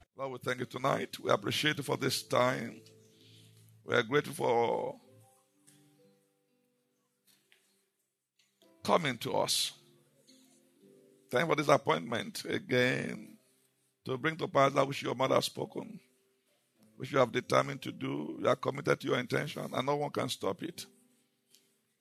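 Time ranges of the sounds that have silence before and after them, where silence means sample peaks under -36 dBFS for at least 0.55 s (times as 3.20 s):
3.88–4.91 s
8.85–9.69 s
11.32–13.15 s
14.07–15.83 s
17.02–20.83 s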